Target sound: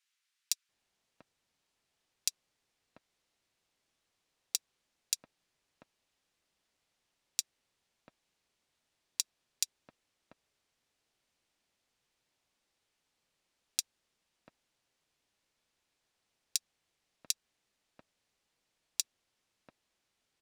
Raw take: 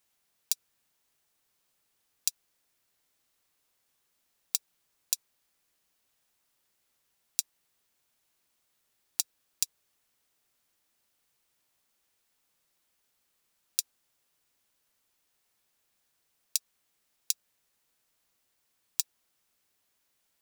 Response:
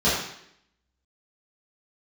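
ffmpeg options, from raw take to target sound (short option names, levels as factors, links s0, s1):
-filter_complex "[0:a]adynamicsmooth=sensitivity=5.5:basefreq=7100,acrossover=split=1300[s0][s1];[s0]adelay=690[s2];[s2][s1]amix=inputs=2:normalize=0"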